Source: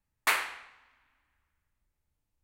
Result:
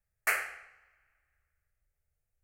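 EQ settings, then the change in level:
phaser with its sweep stopped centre 980 Hz, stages 6
0.0 dB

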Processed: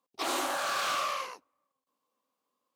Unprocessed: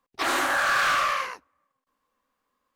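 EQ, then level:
Bessel high-pass filter 240 Hz, order 2
parametric band 1,700 Hz −12 dB 0.86 octaves
−2.5 dB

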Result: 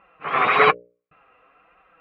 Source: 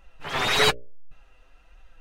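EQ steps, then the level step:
loudspeaker in its box 160–2,700 Hz, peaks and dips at 180 Hz +4 dB, 310 Hz +3 dB, 470 Hz +7 dB, 750 Hz +6 dB, 1,300 Hz +7 dB, 2,300 Hz +8 dB
parametric band 1,100 Hz +13 dB 0.22 octaves
notch filter 910 Hz, Q 15
0.0 dB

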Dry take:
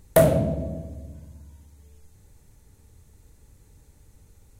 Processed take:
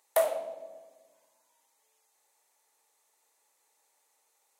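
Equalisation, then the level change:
four-pole ladder high-pass 620 Hz, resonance 30%
parametric band 1,500 Hz −5.5 dB 0.32 octaves
0.0 dB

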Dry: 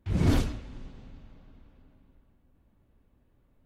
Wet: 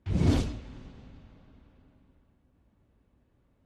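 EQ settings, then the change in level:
low-pass filter 8,600 Hz 12 dB per octave
dynamic equaliser 1,500 Hz, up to −5 dB, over −51 dBFS, Q 1.1
high-pass filter 42 Hz
0.0 dB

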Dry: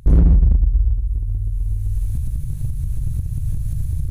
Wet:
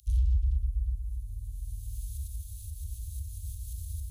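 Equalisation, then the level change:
high-pass filter 110 Hz 12 dB per octave
inverse Chebyshev band-stop filter 280–730 Hz, stop band 80 dB
inverse Chebyshev band-stop filter 350–870 Hz, stop band 80 dB
0.0 dB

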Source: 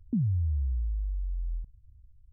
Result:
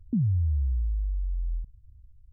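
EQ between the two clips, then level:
low-shelf EQ 440 Hz +5.5 dB
−2.5 dB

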